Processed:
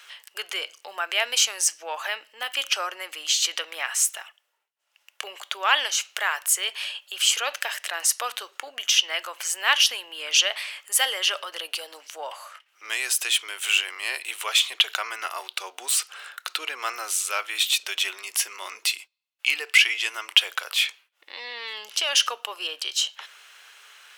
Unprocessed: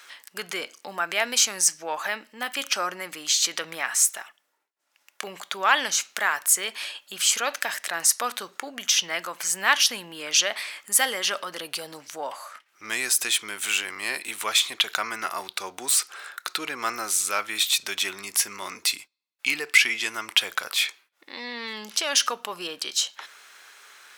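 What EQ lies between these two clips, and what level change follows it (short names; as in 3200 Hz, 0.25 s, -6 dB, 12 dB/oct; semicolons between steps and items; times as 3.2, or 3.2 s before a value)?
HPF 430 Hz 24 dB/oct; bell 2900 Hz +9 dB 0.37 oct; -2.0 dB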